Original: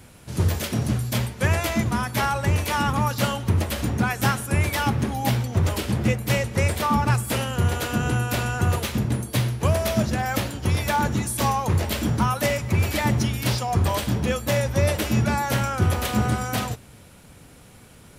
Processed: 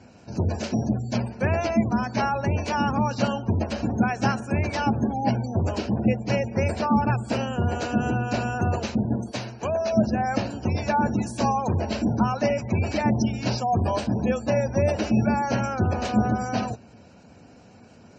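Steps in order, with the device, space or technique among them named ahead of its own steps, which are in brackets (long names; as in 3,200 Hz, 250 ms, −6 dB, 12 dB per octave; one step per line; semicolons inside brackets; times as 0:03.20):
car door speaker (loudspeaker in its box 96–6,500 Hz, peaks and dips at 140 Hz −6 dB, 230 Hz +5 dB, 690 Hz +5 dB, 1,200 Hz −6 dB, 2,000 Hz −7 dB, 3,400 Hz −10 dB)
0:09.31–0:09.93: low-shelf EQ 350 Hz −11.5 dB
gate on every frequency bin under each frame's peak −30 dB strong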